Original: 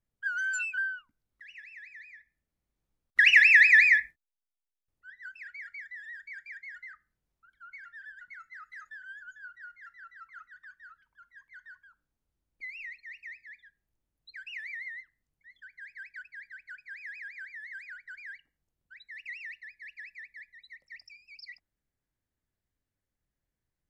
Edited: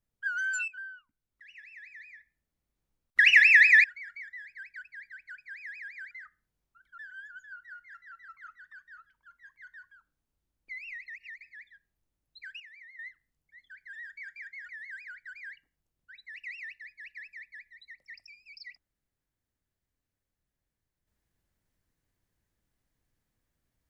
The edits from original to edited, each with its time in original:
0:00.68–0:01.99: fade in, from −13.5 dB
0:03.84–0:05.42: remove
0:06.03–0:06.79: swap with 0:15.85–0:17.51
0:07.66–0:08.90: remove
0:13.00–0:13.33: reverse
0:14.52–0:14.91: clip gain −12 dB

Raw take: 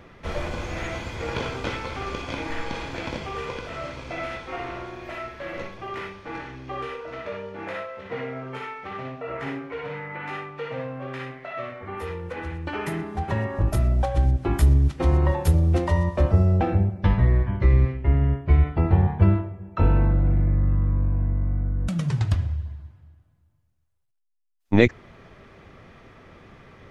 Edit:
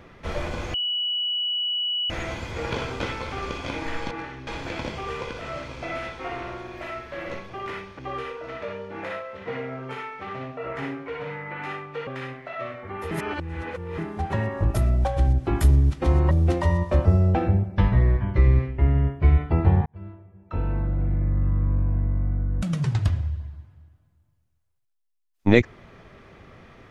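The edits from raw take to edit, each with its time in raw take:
0:00.74: insert tone 2,940 Hz −23 dBFS 1.36 s
0:06.27–0:06.63: move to 0:02.75
0:10.71–0:11.05: remove
0:12.09–0:12.96: reverse
0:15.29–0:15.57: remove
0:19.12–0:20.99: fade in

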